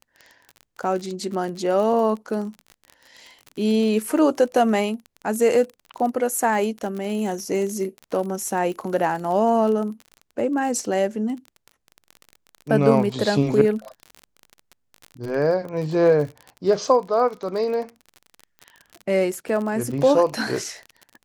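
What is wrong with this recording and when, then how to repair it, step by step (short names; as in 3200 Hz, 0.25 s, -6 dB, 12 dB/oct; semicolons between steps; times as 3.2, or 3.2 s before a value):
crackle 36/s -29 dBFS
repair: de-click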